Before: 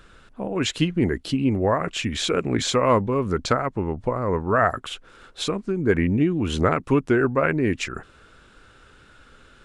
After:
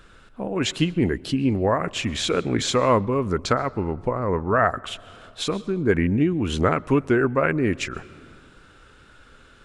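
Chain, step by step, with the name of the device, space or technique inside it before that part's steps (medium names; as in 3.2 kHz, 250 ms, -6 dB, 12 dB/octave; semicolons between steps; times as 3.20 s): compressed reverb return (on a send at -12 dB: reverberation RT60 1.4 s, pre-delay 111 ms + compression 6:1, threshold -29 dBFS, peak gain reduction 13.5 dB); 4.09–4.88 s: on the sum: low-pass 7.1 kHz 12 dB/octave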